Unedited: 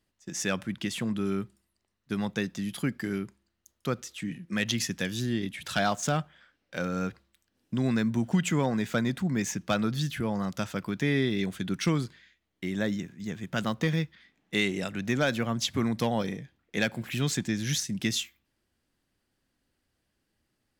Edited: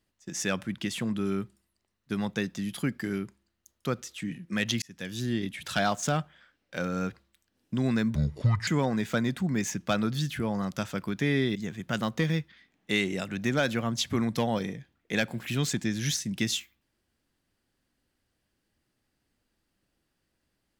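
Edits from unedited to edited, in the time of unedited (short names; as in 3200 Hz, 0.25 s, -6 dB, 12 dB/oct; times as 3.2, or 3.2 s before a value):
4.82–5.29 fade in
8.15–8.48 speed 63%
11.36–13.19 cut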